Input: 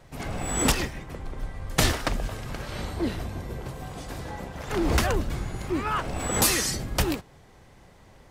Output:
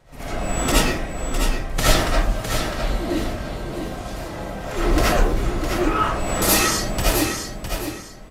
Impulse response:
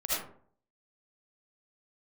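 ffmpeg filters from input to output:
-filter_complex "[0:a]aecho=1:1:658|1316|1974:0.447|0.121|0.0326[s0];[1:a]atrim=start_sample=2205[s1];[s0][s1]afir=irnorm=-1:irlink=0,volume=0.891"

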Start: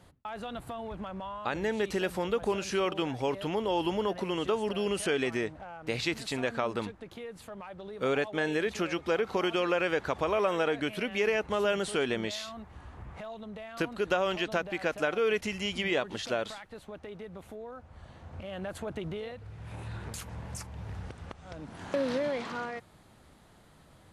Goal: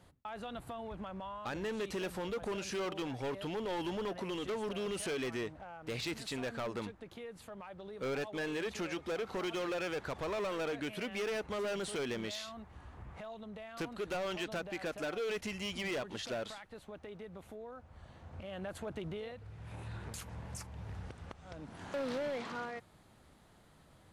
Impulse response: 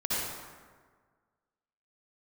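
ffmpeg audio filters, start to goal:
-af "asoftclip=type=hard:threshold=0.0355,volume=0.596"

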